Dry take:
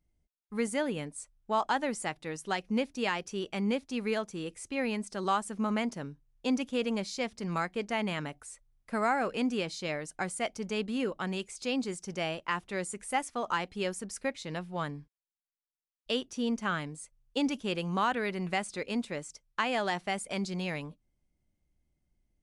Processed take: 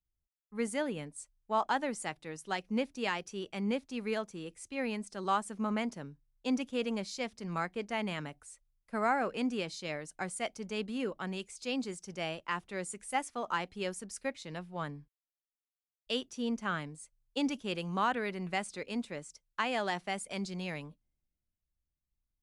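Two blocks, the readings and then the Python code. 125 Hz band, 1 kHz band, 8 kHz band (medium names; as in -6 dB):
-3.5 dB, -2.0 dB, -3.0 dB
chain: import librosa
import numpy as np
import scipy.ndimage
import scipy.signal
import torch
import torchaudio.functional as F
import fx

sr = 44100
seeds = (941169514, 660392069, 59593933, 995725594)

y = fx.band_widen(x, sr, depth_pct=40)
y = y * 10.0 ** (-3.0 / 20.0)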